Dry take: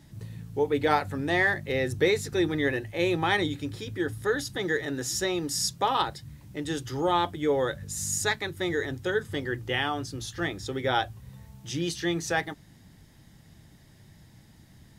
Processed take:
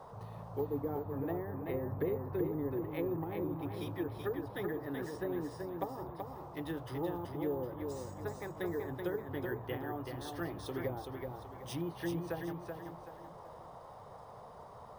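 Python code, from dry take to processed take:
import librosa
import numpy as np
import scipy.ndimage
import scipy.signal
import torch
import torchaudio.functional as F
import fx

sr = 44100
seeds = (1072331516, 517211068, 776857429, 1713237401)

p1 = fx.env_lowpass_down(x, sr, base_hz=400.0, full_db=-22.5)
p2 = np.repeat(scipy.signal.resample_poly(p1, 1, 3), 3)[:len(p1)]
p3 = p2 + fx.echo_feedback(p2, sr, ms=380, feedback_pct=36, wet_db=-5.0, dry=0)
p4 = fx.dmg_noise_band(p3, sr, seeds[0], low_hz=430.0, high_hz=1100.0, level_db=-44.0)
y = p4 * 10.0 ** (-8.0 / 20.0)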